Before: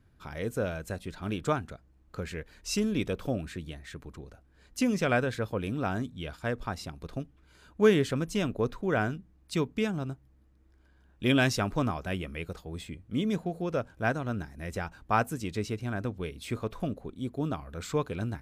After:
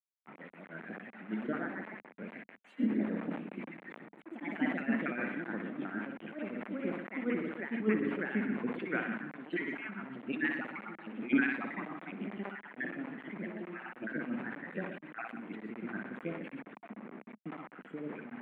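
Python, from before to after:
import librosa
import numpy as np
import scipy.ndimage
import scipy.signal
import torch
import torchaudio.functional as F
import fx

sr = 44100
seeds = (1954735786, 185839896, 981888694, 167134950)

y = fx.spec_dropout(x, sr, seeds[0], share_pct=61)
y = fx.echo_pitch(y, sr, ms=269, semitones=2, count=3, db_per_echo=-3.0)
y = fx.band_shelf(y, sr, hz=700.0, db=-10.5, octaves=1.7)
y = fx.room_flutter(y, sr, wall_m=10.4, rt60_s=0.75)
y = y * (1.0 - 0.84 / 2.0 + 0.84 / 2.0 * np.cos(2.0 * np.pi * 6.7 * (np.arange(len(y)) / sr)))
y = fx.quant_dither(y, sr, seeds[1], bits=8, dither='none')
y = scipy.signal.sosfilt(scipy.signal.ellip(3, 1.0, 40, [210.0, 2200.0], 'bandpass', fs=sr, output='sos'), y)
y = fx.sustainer(y, sr, db_per_s=67.0)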